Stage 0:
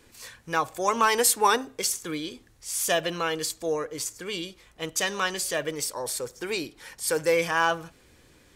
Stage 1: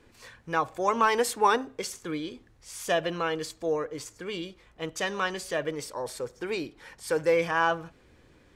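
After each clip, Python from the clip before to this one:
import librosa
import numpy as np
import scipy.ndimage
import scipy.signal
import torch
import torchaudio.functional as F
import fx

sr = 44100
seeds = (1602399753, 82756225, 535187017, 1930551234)

y = fx.lowpass(x, sr, hz=2000.0, slope=6)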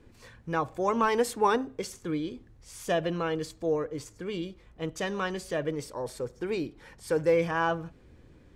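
y = fx.low_shelf(x, sr, hz=440.0, db=11.0)
y = y * librosa.db_to_amplitude(-5.0)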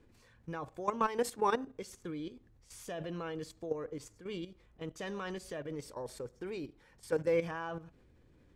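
y = fx.level_steps(x, sr, step_db=12)
y = y * librosa.db_to_amplitude(-3.5)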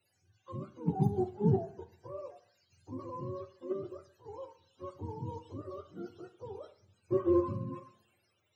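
y = fx.octave_mirror(x, sr, pivot_hz=420.0)
y = fx.rev_double_slope(y, sr, seeds[0], early_s=0.58, late_s=1.8, knee_db=-21, drr_db=9.5)
y = fx.band_widen(y, sr, depth_pct=40)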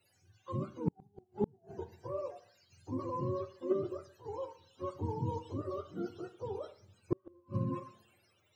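y = fx.gate_flip(x, sr, shuts_db=-23.0, range_db=-41)
y = y * librosa.db_to_amplitude(4.5)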